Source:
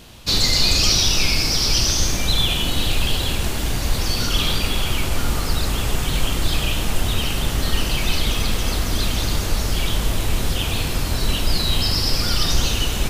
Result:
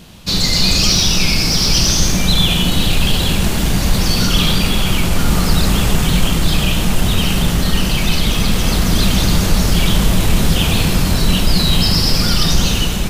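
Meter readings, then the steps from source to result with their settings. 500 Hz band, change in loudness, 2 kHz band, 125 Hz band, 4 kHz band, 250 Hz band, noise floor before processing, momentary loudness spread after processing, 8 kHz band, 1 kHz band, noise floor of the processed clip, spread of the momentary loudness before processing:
+5.5 dB, +5.5 dB, +5.0 dB, +7.5 dB, +4.5 dB, +11.0 dB, -24 dBFS, 4 LU, +4.5 dB, +5.5 dB, -17 dBFS, 7 LU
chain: peaking EQ 180 Hz +11.5 dB 0.47 oct; level rider; in parallel at -9 dB: saturation -16 dBFS, distortion -9 dB; on the sum: trim -1 dB

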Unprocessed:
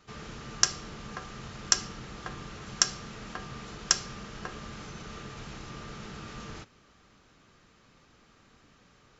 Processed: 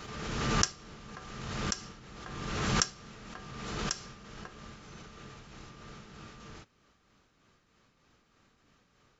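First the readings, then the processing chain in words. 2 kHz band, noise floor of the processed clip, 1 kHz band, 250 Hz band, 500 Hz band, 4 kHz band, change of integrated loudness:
-1.0 dB, -70 dBFS, +1.5 dB, +3.5 dB, +2.5 dB, -5.5 dB, -1.5 dB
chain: tremolo 3.2 Hz, depth 48%; swell ahead of each attack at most 33 dB/s; trim -5.5 dB

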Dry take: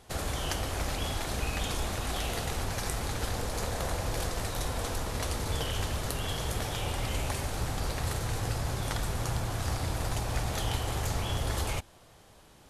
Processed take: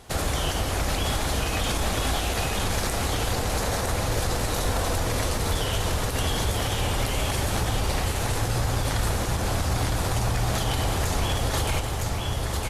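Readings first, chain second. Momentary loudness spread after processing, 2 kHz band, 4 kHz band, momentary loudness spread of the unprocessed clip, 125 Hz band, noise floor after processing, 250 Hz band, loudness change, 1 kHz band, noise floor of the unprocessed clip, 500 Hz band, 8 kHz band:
1 LU, +7.5 dB, +7.5 dB, 2 LU, +7.0 dB, -28 dBFS, +7.5 dB, +7.0 dB, +7.5 dB, -56 dBFS, +7.5 dB, +7.0 dB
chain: delay 959 ms -4 dB; peak limiter -23 dBFS, peak gain reduction 9.5 dB; trim +7.5 dB; Opus 48 kbps 48 kHz

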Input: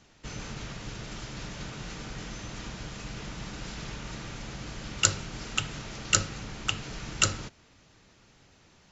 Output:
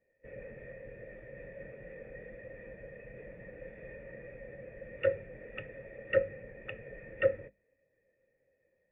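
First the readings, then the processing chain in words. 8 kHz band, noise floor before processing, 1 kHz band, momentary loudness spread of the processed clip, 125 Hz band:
no reading, -60 dBFS, -15.5 dB, 17 LU, -13.0 dB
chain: cascade formant filter e; hum notches 50/100/150/200/250/300 Hz; spectral contrast expander 1.5:1; trim +13.5 dB

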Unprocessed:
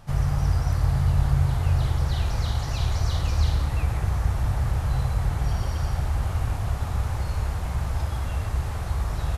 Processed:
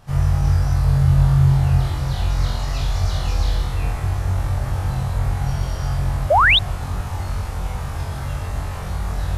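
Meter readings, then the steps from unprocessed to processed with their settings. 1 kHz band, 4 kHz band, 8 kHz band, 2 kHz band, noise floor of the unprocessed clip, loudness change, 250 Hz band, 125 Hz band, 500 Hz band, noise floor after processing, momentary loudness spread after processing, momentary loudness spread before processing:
+10.0 dB, +13.0 dB, +3.5 dB, +14.5 dB, -30 dBFS, +5.5 dB, +6.5 dB, +4.5 dB, +9.0 dB, -28 dBFS, 12 LU, 6 LU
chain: flutter echo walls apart 3.8 m, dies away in 0.51 s; painted sound rise, 6.30–6.59 s, 530–4000 Hz -13 dBFS

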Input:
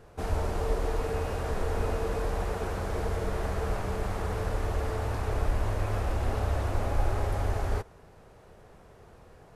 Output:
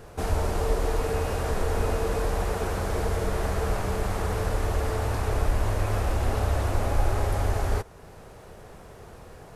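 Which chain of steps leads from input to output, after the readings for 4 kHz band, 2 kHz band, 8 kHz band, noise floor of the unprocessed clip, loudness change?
+5.5 dB, +4.0 dB, +7.5 dB, -54 dBFS, +3.5 dB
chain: treble shelf 5.5 kHz +6 dB; in parallel at -2.5 dB: compression, threshold -42 dBFS, peak gain reduction 20.5 dB; on the sum: trim +2.5 dB

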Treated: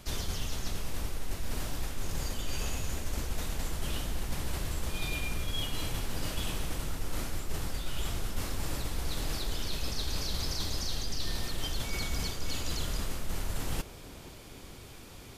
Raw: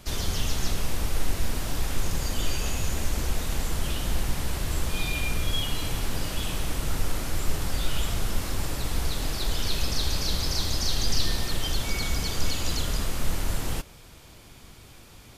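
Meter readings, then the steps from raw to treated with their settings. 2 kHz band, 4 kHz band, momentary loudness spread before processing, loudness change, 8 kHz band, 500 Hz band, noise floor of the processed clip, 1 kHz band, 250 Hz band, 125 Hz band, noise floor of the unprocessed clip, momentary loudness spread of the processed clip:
-6.0 dB, -6.5 dB, 5 LU, -6.5 dB, -6.5 dB, -5.5 dB, -48 dBFS, -6.0 dB, -6.0 dB, -6.5 dB, -49 dBFS, 5 LU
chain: reverse; compression, threshold -28 dBFS, peak gain reduction 12 dB; reverse; band-passed feedback delay 479 ms, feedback 81%, band-pass 380 Hz, level -11 dB

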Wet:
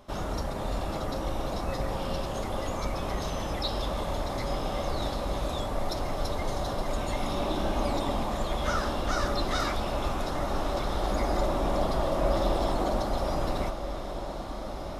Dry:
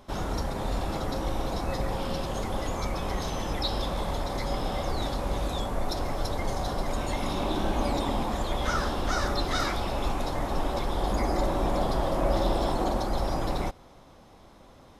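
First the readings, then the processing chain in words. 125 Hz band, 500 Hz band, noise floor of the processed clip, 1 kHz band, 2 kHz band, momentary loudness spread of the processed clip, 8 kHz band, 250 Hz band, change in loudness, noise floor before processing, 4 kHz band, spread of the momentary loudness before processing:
-1.5 dB, +0.5 dB, -35 dBFS, -1.0 dB, -1.0 dB, 5 LU, -1.5 dB, -1.5 dB, -1.0 dB, -53 dBFS, -1.0 dB, 4 LU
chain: small resonant body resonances 610/1200/2800 Hz, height 6 dB; on a send: echo that smears into a reverb 1533 ms, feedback 66%, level -10 dB; on the sum: trim -2 dB

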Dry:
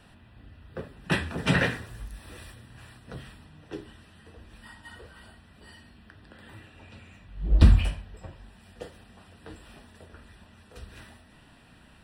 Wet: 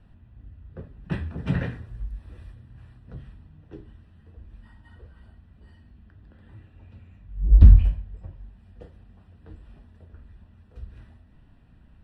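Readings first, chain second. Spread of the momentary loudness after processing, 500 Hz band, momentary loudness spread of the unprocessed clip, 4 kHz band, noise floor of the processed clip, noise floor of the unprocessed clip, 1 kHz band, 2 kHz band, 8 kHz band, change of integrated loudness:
24 LU, -7.0 dB, 24 LU, under -15 dB, -55 dBFS, -55 dBFS, -10.0 dB, -12.5 dB, under -20 dB, +4.5 dB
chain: RIAA curve playback; trim -10 dB

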